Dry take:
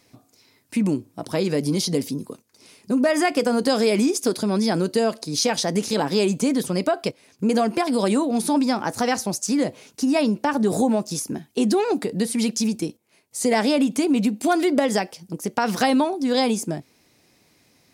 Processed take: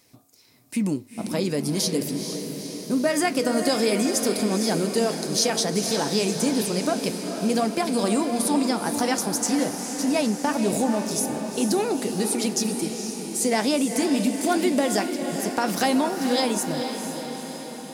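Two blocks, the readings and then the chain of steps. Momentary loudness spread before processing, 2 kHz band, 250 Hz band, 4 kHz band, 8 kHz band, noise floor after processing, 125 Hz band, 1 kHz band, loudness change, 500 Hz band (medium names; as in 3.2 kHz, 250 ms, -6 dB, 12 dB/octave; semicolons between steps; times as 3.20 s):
8 LU, -1.5 dB, -2.0 dB, +0.5 dB, +3.0 dB, -38 dBFS, -2.0 dB, -2.0 dB, -1.5 dB, -2.0 dB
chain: treble shelf 6.2 kHz +9 dB; flange 1.3 Hz, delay 4.9 ms, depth 6.8 ms, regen -78%; echo that smears into a reverb 465 ms, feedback 63%, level -7 dB; trim +1 dB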